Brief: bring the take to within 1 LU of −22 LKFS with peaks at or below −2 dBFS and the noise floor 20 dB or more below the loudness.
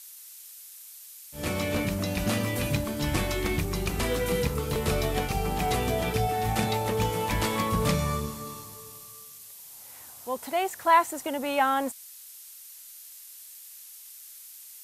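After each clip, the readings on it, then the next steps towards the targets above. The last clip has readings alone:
background noise floor −47 dBFS; target noise floor −48 dBFS; integrated loudness −27.5 LKFS; sample peak −9.0 dBFS; target loudness −22.0 LKFS
→ noise reduction from a noise print 6 dB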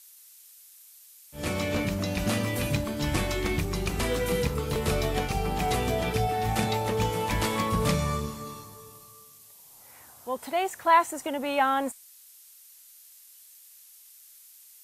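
background noise floor −53 dBFS; integrated loudness −27.5 LKFS; sample peak −9.0 dBFS; target loudness −22.0 LKFS
→ level +5.5 dB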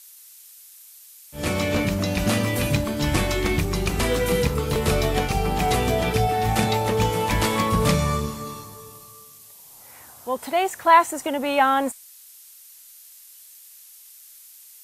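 integrated loudness −22.0 LKFS; sample peak −3.5 dBFS; background noise floor −47 dBFS

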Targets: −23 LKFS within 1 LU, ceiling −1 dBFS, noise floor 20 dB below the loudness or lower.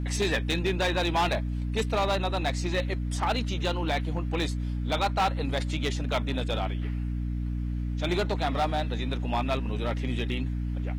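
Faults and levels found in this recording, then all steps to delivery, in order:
share of clipped samples 1.5%; peaks flattened at −20.5 dBFS; mains hum 60 Hz; hum harmonics up to 300 Hz; level of the hum −28 dBFS; integrated loudness −29.0 LKFS; sample peak −20.5 dBFS; target loudness −23.0 LKFS
→ clipped peaks rebuilt −20.5 dBFS
hum removal 60 Hz, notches 5
level +6 dB

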